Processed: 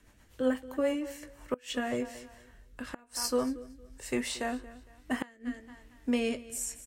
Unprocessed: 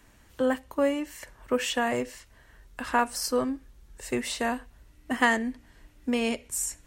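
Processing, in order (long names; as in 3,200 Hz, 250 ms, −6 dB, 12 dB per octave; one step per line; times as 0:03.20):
double-tracking delay 20 ms −10 dB
repeating echo 229 ms, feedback 27%, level −17 dB
gate with flip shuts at −14 dBFS, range −28 dB
rotating-speaker cabinet horn 8 Hz, later 1.1 Hz, at 0:00.54
level −2 dB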